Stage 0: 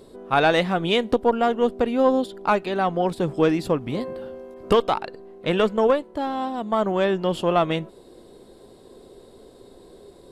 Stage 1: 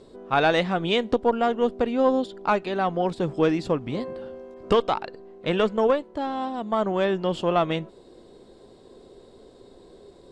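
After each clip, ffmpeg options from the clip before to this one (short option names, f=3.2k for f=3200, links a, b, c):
-af "lowpass=f=7.9k:w=0.5412,lowpass=f=7.9k:w=1.3066,volume=-2dB"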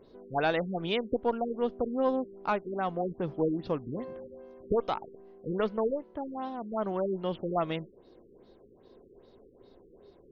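-af "afftfilt=real='re*lt(b*sr/1024,470*pow(6800/470,0.5+0.5*sin(2*PI*2.5*pts/sr)))':imag='im*lt(b*sr/1024,470*pow(6800/470,0.5+0.5*sin(2*PI*2.5*pts/sr)))':win_size=1024:overlap=0.75,volume=-7dB"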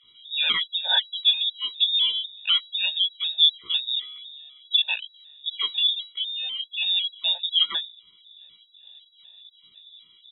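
-filter_complex "[0:a]lowpass=f=3.3k:t=q:w=0.5098,lowpass=f=3.3k:t=q:w=0.6013,lowpass=f=3.3k:t=q:w=0.9,lowpass=f=3.3k:t=q:w=2.563,afreqshift=-3900,asplit=2[a][b];[b]adelay=17,volume=-2.5dB[c];[a][c]amix=inputs=2:normalize=0,afftfilt=real='re*gt(sin(2*PI*2*pts/sr)*(1-2*mod(floor(b*sr/1024/480),2)),0)':imag='im*gt(sin(2*PI*2*pts/sr)*(1-2*mod(floor(b*sr/1024/480),2)),0)':win_size=1024:overlap=0.75,volume=7.5dB"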